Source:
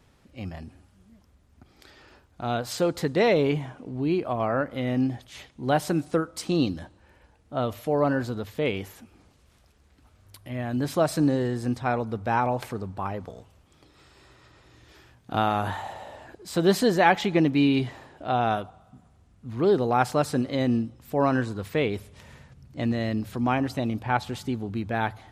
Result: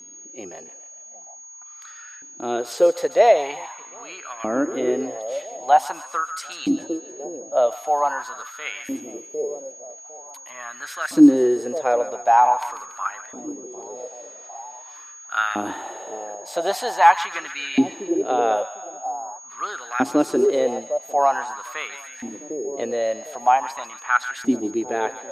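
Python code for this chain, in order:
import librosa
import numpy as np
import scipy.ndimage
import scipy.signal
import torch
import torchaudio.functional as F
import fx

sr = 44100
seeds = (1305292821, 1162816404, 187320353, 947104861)

y = x + 10.0 ** (-40.0 / 20.0) * np.sin(2.0 * np.pi * 6600.0 * np.arange(len(x)) / sr)
y = fx.echo_split(y, sr, split_hz=850.0, low_ms=753, high_ms=142, feedback_pct=52, wet_db=-12.0)
y = fx.filter_lfo_highpass(y, sr, shape='saw_up', hz=0.45, low_hz=270.0, high_hz=1700.0, q=6.0)
y = y * librosa.db_to_amplitude(-1.0)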